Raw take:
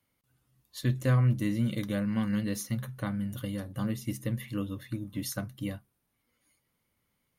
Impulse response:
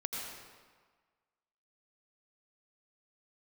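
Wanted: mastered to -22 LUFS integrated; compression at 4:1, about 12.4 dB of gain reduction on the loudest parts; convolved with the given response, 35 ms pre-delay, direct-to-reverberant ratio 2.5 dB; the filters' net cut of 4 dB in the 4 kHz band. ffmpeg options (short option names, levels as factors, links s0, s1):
-filter_complex "[0:a]equalizer=f=4000:t=o:g=-5.5,acompressor=threshold=0.0158:ratio=4,asplit=2[s0][s1];[1:a]atrim=start_sample=2205,adelay=35[s2];[s1][s2]afir=irnorm=-1:irlink=0,volume=0.562[s3];[s0][s3]amix=inputs=2:normalize=0,volume=6.68"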